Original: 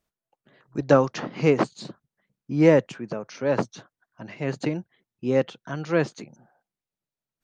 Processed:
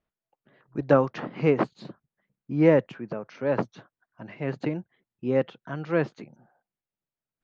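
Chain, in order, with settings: low-pass 2.8 kHz 12 dB/octave; trim -2 dB

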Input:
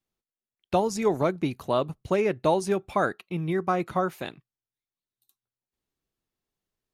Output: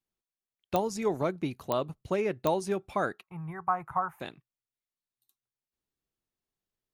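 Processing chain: 3.23–4.20 s: FFT filter 150 Hz 0 dB, 230 Hz -19 dB, 570 Hz -10 dB, 860 Hz +10 dB, 1.7 kHz -1 dB, 4.2 kHz -26 dB, 10 kHz -6 dB; clicks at 0.76/1.72/2.47 s, -9 dBFS; trim -5 dB

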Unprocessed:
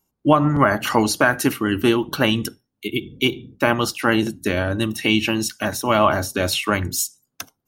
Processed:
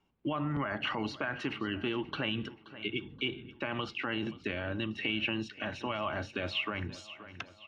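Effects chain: peak limiter -13 dBFS, peak gain reduction 10.5 dB; four-pole ladder low-pass 3.4 kHz, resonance 45%; feedback delay 527 ms, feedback 46%, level -19.5 dB; three bands compressed up and down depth 40%; trim -3 dB

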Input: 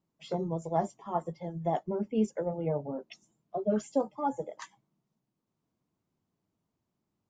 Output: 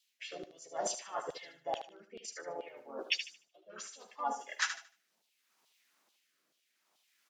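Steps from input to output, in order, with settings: graphic EQ 125/250/1000 Hz -6/+4/-10 dB; reverse; compression 8:1, threshold -44 dBFS, peak gain reduction 21.5 dB; reverse; harmony voices -3 st -1 dB; LFO high-pass saw down 2.3 Hz 790–3600 Hz; rotary cabinet horn 0.65 Hz; on a send: thinning echo 75 ms, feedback 28%, high-pass 400 Hz, level -8.5 dB; on the sum: trim +16 dB

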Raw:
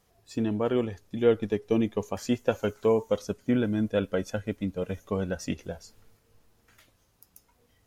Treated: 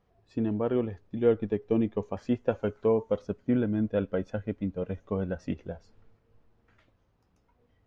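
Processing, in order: tape spacing loss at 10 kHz 32 dB

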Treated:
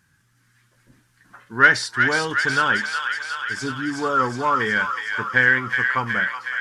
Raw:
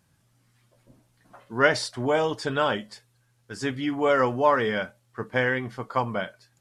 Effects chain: spectral selection erased 3.61–4.60 s, 1.4–3.5 kHz; saturation -8 dBFS, distortion -25 dB; fifteen-band graphic EQ 630 Hz -11 dB, 1.6 kHz +12 dB, 6.3 kHz +3 dB; on a send: feedback echo behind a high-pass 367 ms, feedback 70%, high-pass 1.4 kHz, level -3.5 dB; on the sum: trim +1.5 dB

